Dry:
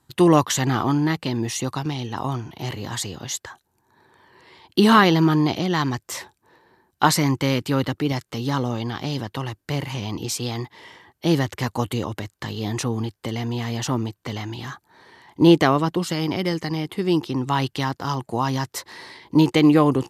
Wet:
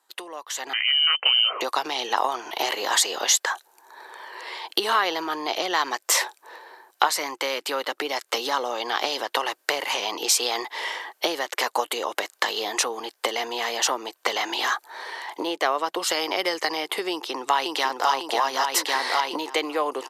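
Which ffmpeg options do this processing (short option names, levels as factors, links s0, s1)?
-filter_complex "[0:a]asettb=1/sr,asplit=3[s0][s1][s2];[s0]atrim=end=0.734[s3];[s1]atrim=start=0.73:end=1.61,asetpts=PTS-STARTPTS,afade=t=in:d=0.004:c=qsin,afade=t=out:st=0.876:d=0.004:c=qsin,lowpass=f=2700:t=q:w=0.5098,lowpass=f=2700:t=q:w=0.6013,lowpass=f=2700:t=q:w=0.9,lowpass=f=2700:t=q:w=2.563,afreqshift=-3200[s4];[s2]atrim=start=1.606[s5];[s3][s4]acrossfade=d=0.004:c1=hsin:c2=qsin[s6];[s6][s5]acrossfade=d=0.004:c1=qsin:c2=hsin,asplit=2[s7][s8];[s8]afade=t=in:st=17.1:d=0.01,afade=t=out:st=18.1:d=0.01,aecho=0:1:550|1100|1650|2200|2750|3300|3850:0.668344|0.334172|0.167086|0.083543|0.0417715|0.0208857|0.0104429[s9];[s7][s9]amix=inputs=2:normalize=0,acompressor=threshold=0.0316:ratio=12,highpass=f=480:w=0.5412,highpass=f=480:w=1.3066,dynaudnorm=f=310:g=5:m=5.62"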